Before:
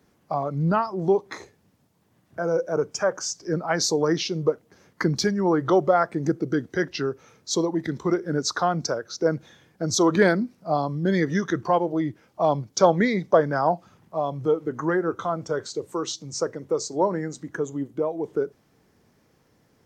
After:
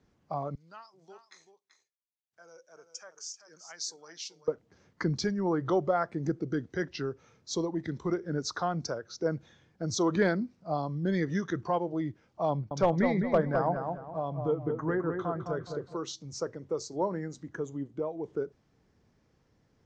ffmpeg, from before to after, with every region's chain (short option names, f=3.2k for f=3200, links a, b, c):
-filter_complex "[0:a]asettb=1/sr,asplit=3[a][b][c];[a]atrim=end=0.554[d];[b]atrim=start=0.55:end=4.48,asetpts=PTS-STARTPTS,afade=t=in:d=0.004:c=qsin,afade=t=out:st=3.926:d=0.004:c=qsin,agate=range=-33dB:threshold=-52dB:ratio=3:release=100:detection=peak,aderivative,aecho=1:1:386:0.316,atrim=end_sample=173313[e];[c]atrim=start=4.476[f];[d][e]acrossfade=d=0.004:c1=hsin:c2=qsin[g];[g][f]acrossfade=d=0.004:c1=qsin:c2=hsin,asettb=1/sr,asplit=3[h][i][j];[h]atrim=end=12.504[k];[i]atrim=start=12.5:end=15.97,asetpts=PTS-STARTPTS,afade=t=in:d=0.004:c=qsin,afade=t=out:st=3.466:d=0.004:c=qsin,bass=f=250:g=2,treble=f=4k:g=-10,volume=8.5dB,asoftclip=hard,volume=-8.5dB,asplit=2[l][m];[m]adelay=209,lowpass=f=1.8k:p=1,volume=-5dB,asplit=2[n][o];[o]adelay=209,lowpass=f=1.8k:p=1,volume=0.36,asplit=2[p][q];[q]adelay=209,lowpass=f=1.8k:p=1,volume=0.36,asplit=2[r][s];[s]adelay=209,lowpass=f=1.8k:p=1,volume=0.36[t];[l][n][p][r][t]amix=inputs=5:normalize=0,atrim=end_sample=153027[u];[j]atrim=start=15.966[v];[k][u]acrossfade=d=0.004:c1=hsin:c2=qsin[w];[w][v]acrossfade=d=0.004:c1=qsin:c2=hsin,lowpass=f=7k:w=0.5412,lowpass=f=7k:w=1.3066,lowshelf=f=94:g=12,volume=-8.5dB"